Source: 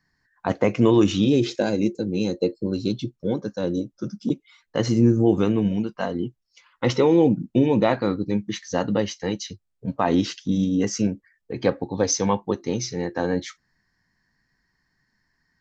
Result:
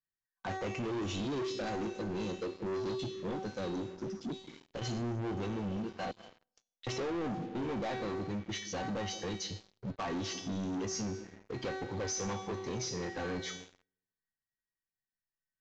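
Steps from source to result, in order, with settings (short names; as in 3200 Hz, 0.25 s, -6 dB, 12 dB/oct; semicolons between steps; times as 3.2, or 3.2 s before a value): bell 98 Hz +6.5 dB 0.29 oct; resonator 380 Hz, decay 0.61 s, mix 90%; 6.11–6.87 inverse Chebyshev band-stop 150–800 Hz, stop band 80 dB; on a send at -21 dB: reverb RT60 1.1 s, pre-delay 0.172 s; on the sum: compressor 2:1, threshold -40 dBFS, peak gain reduction 6 dB; sample leveller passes 5; downsampling 16000 Hz; 3.93–4.82 core saturation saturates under 130 Hz; gain -5 dB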